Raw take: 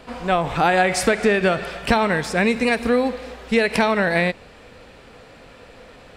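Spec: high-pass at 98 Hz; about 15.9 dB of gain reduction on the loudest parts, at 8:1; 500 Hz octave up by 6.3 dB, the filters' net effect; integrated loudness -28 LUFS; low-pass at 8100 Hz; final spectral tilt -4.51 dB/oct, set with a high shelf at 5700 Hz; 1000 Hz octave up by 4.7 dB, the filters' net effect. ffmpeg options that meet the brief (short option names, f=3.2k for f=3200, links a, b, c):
-af "highpass=98,lowpass=8.1k,equalizer=f=500:t=o:g=6.5,equalizer=f=1k:t=o:g=3.5,highshelf=f=5.7k:g=3.5,acompressor=threshold=-25dB:ratio=8,volume=1dB"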